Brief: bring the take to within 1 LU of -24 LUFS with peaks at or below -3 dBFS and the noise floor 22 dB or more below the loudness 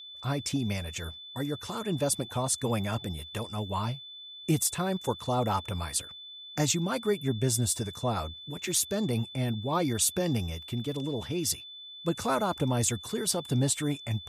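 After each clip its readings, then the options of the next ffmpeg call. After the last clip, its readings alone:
steady tone 3500 Hz; tone level -43 dBFS; loudness -30.0 LUFS; peak -13.0 dBFS; loudness target -24.0 LUFS
-> -af "bandreject=f=3.5k:w=30"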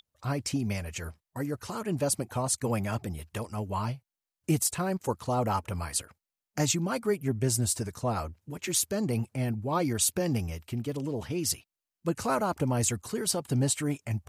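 steady tone none; loudness -30.5 LUFS; peak -13.0 dBFS; loudness target -24.0 LUFS
-> -af "volume=6.5dB"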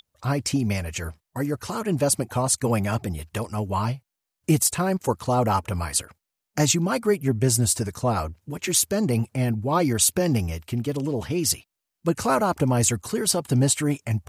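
loudness -24.0 LUFS; peak -6.5 dBFS; noise floor -84 dBFS

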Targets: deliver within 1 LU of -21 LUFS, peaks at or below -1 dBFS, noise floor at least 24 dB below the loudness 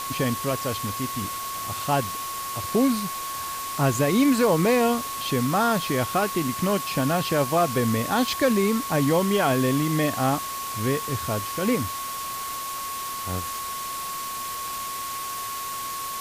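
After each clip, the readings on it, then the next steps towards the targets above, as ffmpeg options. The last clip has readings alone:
steady tone 1100 Hz; tone level -31 dBFS; noise floor -32 dBFS; noise floor target -49 dBFS; loudness -25.0 LUFS; peak -9.0 dBFS; loudness target -21.0 LUFS
-> -af "bandreject=f=1.1k:w=30"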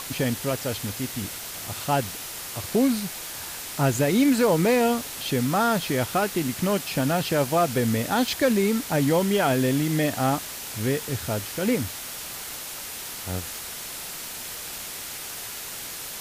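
steady tone none; noise floor -36 dBFS; noise floor target -50 dBFS
-> -af "afftdn=nr=14:nf=-36"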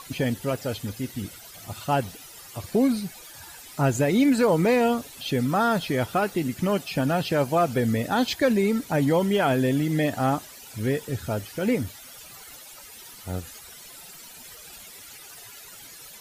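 noise floor -45 dBFS; noise floor target -49 dBFS
-> -af "afftdn=nr=6:nf=-45"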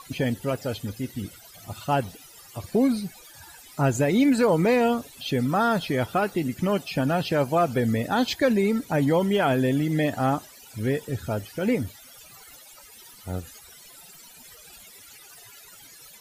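noise floor -49 dBFS; loudness -24.5 LUFS; peak -10.0 dBFS; loudness target -21.0 LUFS
-> -af "volume=3.5dB"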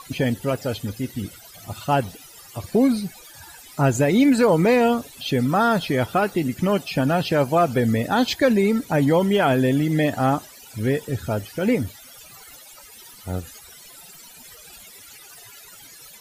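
loudness -21.0 LUFS; peak -6.5 dBFS; noise floor -45 dBFS

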